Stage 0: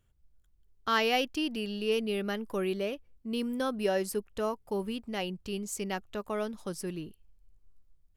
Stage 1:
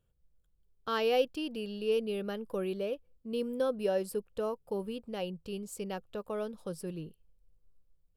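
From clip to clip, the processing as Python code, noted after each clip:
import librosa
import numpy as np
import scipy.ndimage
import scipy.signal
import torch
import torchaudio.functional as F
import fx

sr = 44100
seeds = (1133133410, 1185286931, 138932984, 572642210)

y = fx.graphic_eq_31(x, sr, hz=(160, 500, 2000, 6300), db=(7, 12, -8, -8))
y = y * 10.0 ** (-5.5 / 20.0)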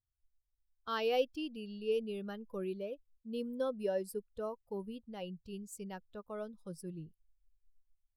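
y = fx.bin_expand(x, sr, power=1.5)
y = y * 10.0 ** (-2.5 / 20.0)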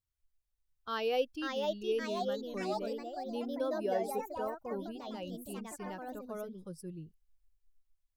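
y = fx.echo_pitch(x, sr, ms=684, semitones=3, count=3, db_per_echo=-3.0)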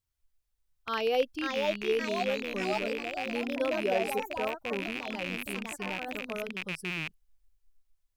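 y = fx.rattle_buzz(x, sr, strikes_db=-53.0, level_db=-27.0)
y = y * 10.0 ** (4.0 / 20.0)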